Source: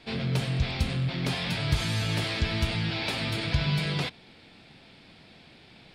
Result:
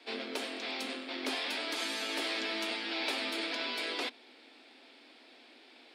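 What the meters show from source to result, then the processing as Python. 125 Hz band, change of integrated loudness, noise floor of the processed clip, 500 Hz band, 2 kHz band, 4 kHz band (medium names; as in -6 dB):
under -40 dB, -6.0 dB, -58 dBFS, -3.0 dB, -3.0 dB, -3.0 dB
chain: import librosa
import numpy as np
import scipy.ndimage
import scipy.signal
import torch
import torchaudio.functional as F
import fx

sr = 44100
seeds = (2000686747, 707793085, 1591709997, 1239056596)

y = scipy.signal.sosfilt(scipy.signal.butter(16, 240.0, 'highpass', fs=sr, output='sos'), x)
y = y * 10.0 ** (-3.0 / 20.0)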